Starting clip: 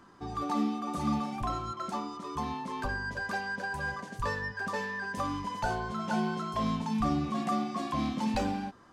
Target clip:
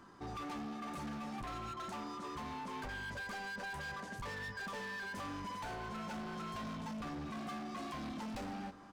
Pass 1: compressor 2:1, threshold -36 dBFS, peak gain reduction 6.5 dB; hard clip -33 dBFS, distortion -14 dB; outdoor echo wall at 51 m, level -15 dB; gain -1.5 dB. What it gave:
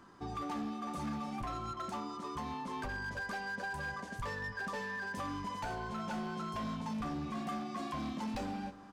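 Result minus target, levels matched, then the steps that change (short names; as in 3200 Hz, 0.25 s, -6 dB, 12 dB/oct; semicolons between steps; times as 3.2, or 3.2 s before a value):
hard clip: distortion -7 dB
change: hard clip -39.5 dBFS, distortion -7 dB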